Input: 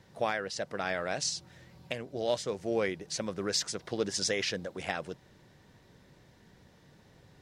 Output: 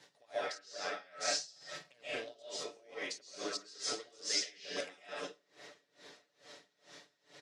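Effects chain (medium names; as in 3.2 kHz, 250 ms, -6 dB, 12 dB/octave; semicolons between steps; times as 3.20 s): comb 6.9 ms, depth 66%; level held to a coarse grid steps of 13 dB; high-pass 320 Hz 12 dB/octave; compression 4:1, threshold -47 dBFS, peak gain reduction 18.5 dB; low-pass 8 kHz 12 dB/octave; treble shelf 2.6 kHz +11 dB; feedback echo behind a low-pass 584 ms, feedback 71%, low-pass 1.6 kHz, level -20 dB; reverberation RT60 0.55 s, pre-delay 95 ms, DRR -6.5 dB; logarithmic tremolo 2.3 Hz, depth 27 dB; trim +5 dB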